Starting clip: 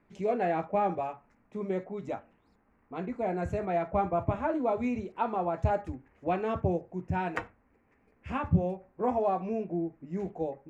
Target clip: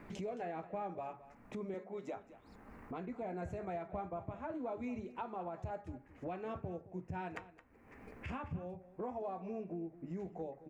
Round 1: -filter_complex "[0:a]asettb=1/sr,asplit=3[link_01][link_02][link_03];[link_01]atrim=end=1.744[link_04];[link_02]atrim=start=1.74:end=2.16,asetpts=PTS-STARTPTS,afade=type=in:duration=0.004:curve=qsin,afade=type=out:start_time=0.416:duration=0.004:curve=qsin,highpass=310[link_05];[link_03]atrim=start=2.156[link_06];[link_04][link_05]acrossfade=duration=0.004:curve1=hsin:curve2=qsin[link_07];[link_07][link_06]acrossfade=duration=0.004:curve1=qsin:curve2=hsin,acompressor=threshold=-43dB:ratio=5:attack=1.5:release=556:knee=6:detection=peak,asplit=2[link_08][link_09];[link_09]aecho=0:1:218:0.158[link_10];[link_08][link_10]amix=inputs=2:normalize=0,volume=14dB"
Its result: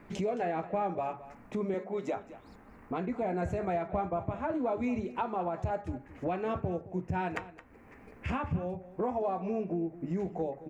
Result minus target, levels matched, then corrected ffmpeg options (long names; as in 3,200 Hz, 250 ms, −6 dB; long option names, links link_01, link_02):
downward compressor: peak gain reduction −9.5 dB
-filter_complex "[0:a]asettb=1/sr,asplit=3[link_01][link_02][link_03];[link_01]atrim=end=1.744[link_04];[link_02]atrim=start=1.74:end=2.16,asetpts=PTS-STARTPTS,afade=type=in:duration=0.004:curve=qsin,afade=type=out:start_time=0.416:duration=0.004:curve=qsin,highpass=310[link_05];[link_03]atrim=start=2.156[link_06];[link_04][link_05]acrossfade=duration=0.004:curve1=hsin:curve2=qsin[link_07];[link_07][link_06]acrossfade=duration=0.004:curve1=qsin:curve2=hsin,acompressor=threshold=-55dB:ratio=5:attack=1.5:release=556:knee=6:detection=peak,asplit=2[link_08][link_09];[link_09]aecho=0:1:218:0.158[link_10];[link_08][link_10]amix=inputs=2:normalize=0,volume=14dB"